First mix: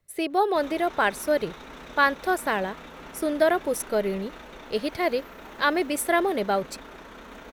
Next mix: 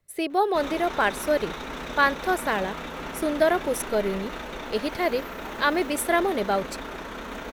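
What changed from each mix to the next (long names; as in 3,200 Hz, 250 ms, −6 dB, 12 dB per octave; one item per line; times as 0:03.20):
background +8.0 dB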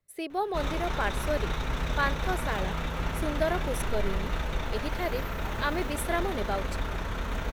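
speech −7.5 dB
background: add low shelf with overshoot 170 Hz +13 dB, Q 1.5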